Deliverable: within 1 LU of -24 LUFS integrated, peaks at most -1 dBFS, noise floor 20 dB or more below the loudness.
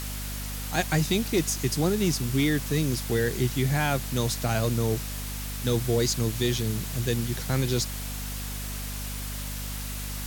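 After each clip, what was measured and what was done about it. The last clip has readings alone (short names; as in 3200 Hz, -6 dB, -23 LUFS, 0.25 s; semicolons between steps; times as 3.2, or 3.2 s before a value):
hum 50 Hz; harmonics up to 250 Hz; hum level -33 dBFS; noise floor -34 dBFS; noise floor target -48 dBFS; loudness -27.5 LUFS; peak -10.5 dBFS; loudness target -24.0 LUFS
-> notches 50/100/150/200/250 Hz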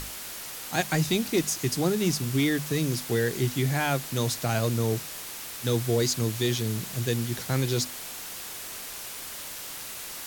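hum none; noise floor -39 dBFS; noise floor target -48 dBFS
-> denoiser 9 dB, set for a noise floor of -39 dBFS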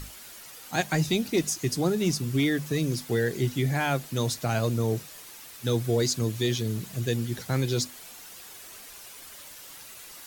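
noise floor -46 dBFS; noise floor target -48 dBFS
-> denoiser 6 dB, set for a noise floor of -46 dBFS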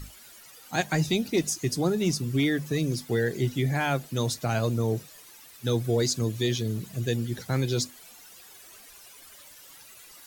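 noise floor -50 dBFS; loudness -27.5 LUFS; peak -10.5 dBFS; loudness target -24.0 LUFS
-> gain +3.5 dB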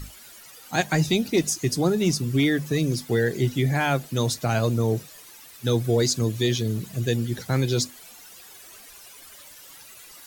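loudness -24.0 LUFS; peak -7.0 dBFS; noise floor -47 dBFS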